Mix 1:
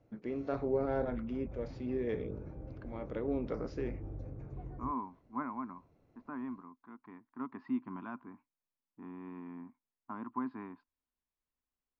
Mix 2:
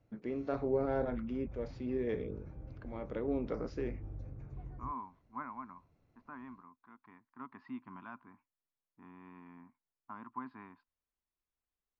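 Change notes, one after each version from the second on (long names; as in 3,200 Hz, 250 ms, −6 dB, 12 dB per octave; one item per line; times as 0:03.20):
second voice: add parametric band 330 Hz −10.5 dB 2.1 octaves
background: add parametric band 430 Hz −7.5 dB 2.3 octaves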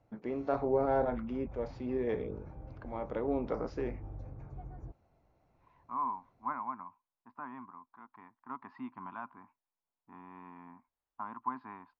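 second voice: entry +1.10 s
master: add parametric band 850 Hz +9.5 dB 1.1 octaves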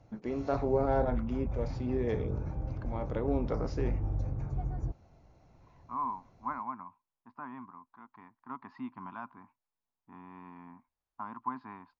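background +7.0 dB
master: add bass and treble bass +5 dB, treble +10 dB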